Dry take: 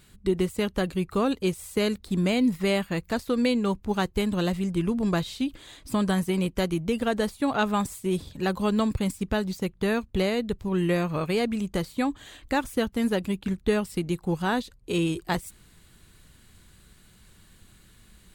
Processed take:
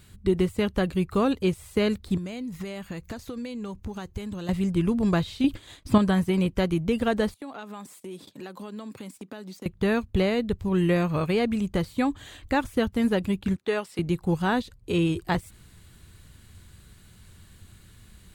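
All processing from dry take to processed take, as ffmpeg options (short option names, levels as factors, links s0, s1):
-filter_complex "[0:a]asettb=1/sr,asplit=3[s0][s1][s2];[s0]atrim=end=2.174[s3];[s1]atrim=start=2.17:end=4.49,asetpts=PTS-STARTPTS,afade=t=in:d=0.004:c=qsin,afade=t=out:st=2.316:d=0.004:c=qsin,acompressor=threshold=0.0251:ratio=16:attack=3.2:release=140:knee=1:detection=peak,equalizer=f=6400:t=o:w=0.25:g=6.5[s4];[s2]atrim=start=4.486[s5];[s3][s4]acrossfade=d=0.004:c1=hsin:c2=qsin[s6];[s6][s5]acrossfade=d=0.004:c1=qsin:c2=hsin,asettb=1/sr,asplit=3[s7][s8][s9];[s7]atrim=end=5.444[s10];[s8]atrim=start=5.44:end=5.98,asetpts=PTS-STARTPTS,afade=t=in:d=0.004:c=qsin,afade=t=out:st=0.536:d=0.004:c=qsin,acontrast=59,agate=range=0.0224:threshold=0.0178:ratio=3:release=100:detection=peak[s11];[s9]atrim=start=5.976[s12];[s10][s11]acrossfade=d=0.004:c1=hsin:c2=qsin[s13];[s13][s12]acrossfade=d=0.004:c1=qsin:c2=hsin,asettb=1/sr,asplit=3[s14][s15][s16];[s14]atrim=end=7.344[s17];[s15]atrim=start=7.34:end=9.66,asetpts=PTS-STARTPTS,afade=t=in:d=0.004:c=qsin,afade=t=out:st=2.316:d=0.004:c=qsin,agate=range=0.178:threshold=0.00708:ratio=16:release=100:detection=peak,highpass=f=210:w=0.5412,highpass=f=210:w=1.3066,acompressor=threshold=0.0112:ratio=4:attack=3.2:release=140:knee=1:detection=peak[s18];[s16]atrim=start=9.656[s19];[s17][s18]acrossfade=d=0.004:c1=hsin:c2=qsin[s20];[s20][s19]acrossfade=d=0.004:c1=qsin:c2=hsin,asettb=1/sr,asplit=3[s21][s22][s23];[s21]atrim=end=13.564[s24];[s22]atrim=start=13.56:end=13.99,asetpts=PTS-STARTPTS,afade=t=in:d=0.004:c=qsin,afade=t=out:st=0.426:d=0.004:c=qsin,highpass=430,highshelf=f=12000:g=-11[s25];[s23]atrim=start=13.986[s26];[s24][s25]acrossfade=d=0.004:c1=hsin:c2=qsin[s27];[s27][s26]acrossfade=d=0.004:c1=qsin:c2=hsin,equalizer=f=91:w=1.5:g=9,acrossover=split=4000[s28][s29];[s29]acompressor=threshold=0.00447:ratio=4:attack=1:release=60[s30];[s28][s30]amix=inputs=2:normalize=0,volume=1.12"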